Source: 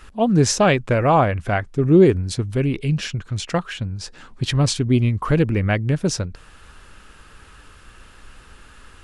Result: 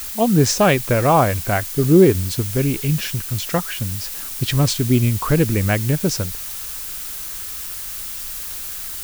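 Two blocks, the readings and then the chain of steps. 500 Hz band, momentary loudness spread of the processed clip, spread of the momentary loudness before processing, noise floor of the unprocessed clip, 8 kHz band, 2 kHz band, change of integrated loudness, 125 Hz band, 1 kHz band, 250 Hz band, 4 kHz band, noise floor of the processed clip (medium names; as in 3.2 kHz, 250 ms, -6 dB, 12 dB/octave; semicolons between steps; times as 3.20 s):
+1.0 dB, 12 LU, 12 LU, -47 dBFS, +5.0 dB, +1.0 dB, +0.5 dB, +1.0 dB, +1.0 dB, +1.0 dB, +2.0 dB, -30 dBFS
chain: added noise blue -31 dBFS; trim +1 dB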